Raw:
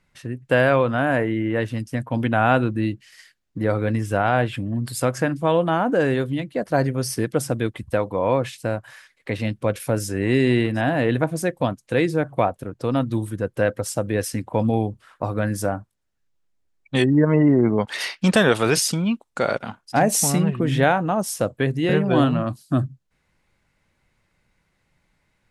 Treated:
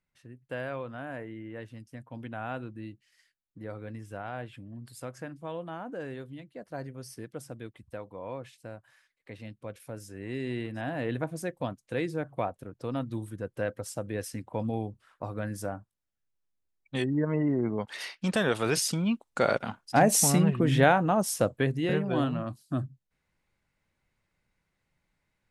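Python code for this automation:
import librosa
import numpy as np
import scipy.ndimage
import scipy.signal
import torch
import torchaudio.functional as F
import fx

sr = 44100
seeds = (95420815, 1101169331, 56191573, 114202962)

y = fx.gain(x, sr, db=fx.line((10.07, -18.5), (11.13, -11.0), (18.28, -11.0), (19.44, -3.0), (21.43, -3.0), (22.11, -10.0)))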